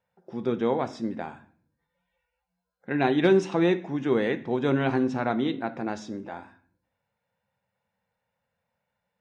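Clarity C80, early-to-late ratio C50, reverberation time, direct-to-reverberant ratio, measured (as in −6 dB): 20.0 dB, 16.0 dB, 0.55 s, 10.5 dB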